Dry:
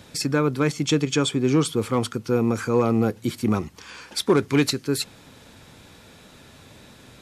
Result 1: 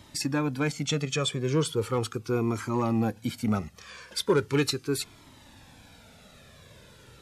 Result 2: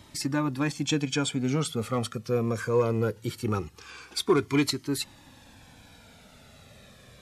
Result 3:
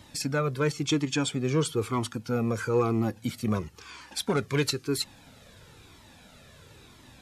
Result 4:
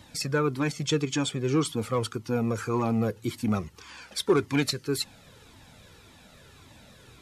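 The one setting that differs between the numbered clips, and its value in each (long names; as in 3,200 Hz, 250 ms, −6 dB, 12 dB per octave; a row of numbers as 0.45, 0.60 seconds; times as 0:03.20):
flanger whose copies keep moving one way, speed: 0.38, 0.21, 1, 1.8 Hertz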